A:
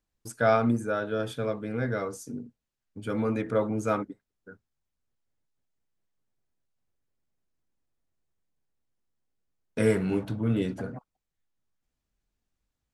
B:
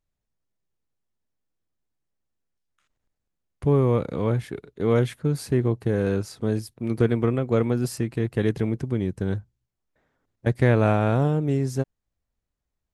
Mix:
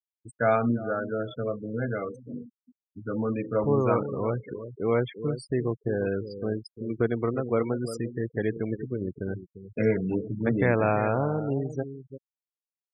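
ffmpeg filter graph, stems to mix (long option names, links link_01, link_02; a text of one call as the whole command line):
ffmpeg -i stem1.wav -i stem2.wav -filter_complex "[0:a]volume=-0.5dB,asplit=2[link_01][link_02];[link_02]volume=-16dB[link_03];[1:a]lowshelf=frequency=290:gain=-10,volume=0dB,asplit=2[link_04][link_05];[link_05]volume=-11dB[link_06];[link_03][link_06]amix=inputs=2:normalize=0,aecho=0:1:347|694|1041:1|0.17|0.0289[link_07];[link_01][link_04][link_07]amix=inputs=3:normalize=0,afftfilt=real='re*gte(hypot(re,im),0.0316)':imag='im*gte(hypot(re,im),0.0316)':win_size=1024:overlap=0.75" out.wav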